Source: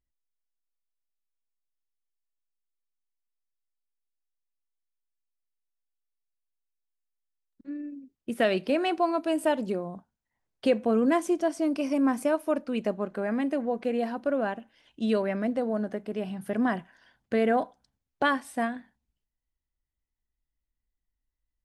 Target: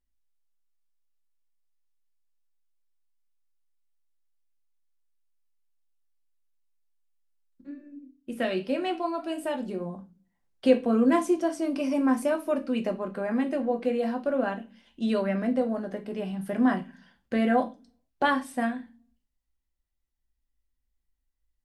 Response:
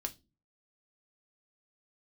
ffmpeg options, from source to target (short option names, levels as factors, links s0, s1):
-filter_complex "[0:a]asplit=3[s0][s1][s2];[s0]afade=t=out:st=7.7:d=0.02[s3];[s1]flanger=delay=10:depth=3.8:regen=73:speed=1.7:shape=sinusoidal,afade=t=in:st=7.7:d=0.02,afade=t=out:st=9.79:d=0.02[s4];[s2]afade=t=in:st=9.79:d=0.02[s5];[s3][s4][s5]amix=inputs=3:normalize=0[s6];[1:a]atrim=start_sample=2205,asetrate=37044,aresample=44100[s7];[s6][s7]afir=irnorm=-1:irlink=0"